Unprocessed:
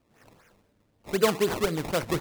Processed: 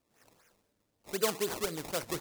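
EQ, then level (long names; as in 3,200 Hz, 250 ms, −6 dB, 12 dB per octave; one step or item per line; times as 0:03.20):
bass and treble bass −5 dB, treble +8 dB
−8.0 dB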